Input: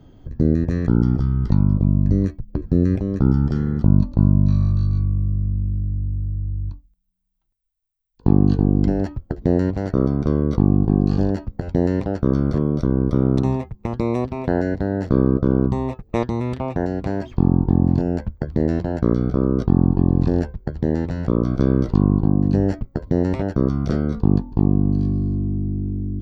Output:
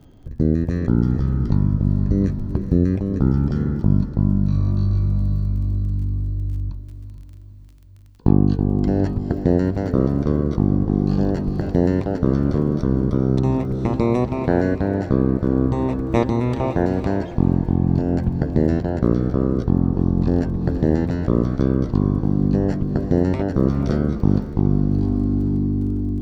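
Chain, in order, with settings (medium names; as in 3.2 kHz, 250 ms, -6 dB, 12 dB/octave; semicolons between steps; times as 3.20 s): crackle 29 per s -42 dBFS; echo that smears into a reverb 459 ms, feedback 50%, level -10 dB; gain riding within 3 dB 0.5 s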